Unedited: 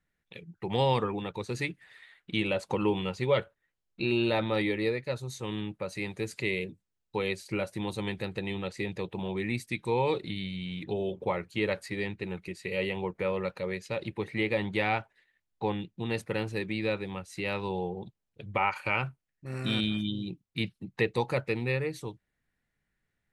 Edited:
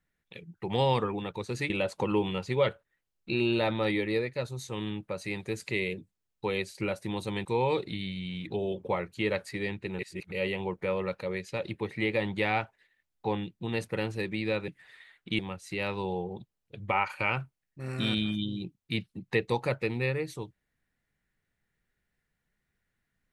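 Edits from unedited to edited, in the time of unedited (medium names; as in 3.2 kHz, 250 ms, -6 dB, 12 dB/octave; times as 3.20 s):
1.70–2.41 s: move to 17.05 s
8.16–9.82 s: delete
12.36–12.69 s: reverse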